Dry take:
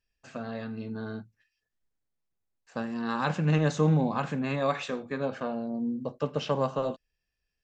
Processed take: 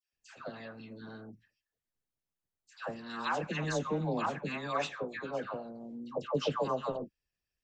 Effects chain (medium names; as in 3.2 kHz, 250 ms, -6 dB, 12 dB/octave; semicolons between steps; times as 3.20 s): harmonic-percussive split harmonic -13 dB; phase dispersion lows, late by 133 ms, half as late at 1.1 kHz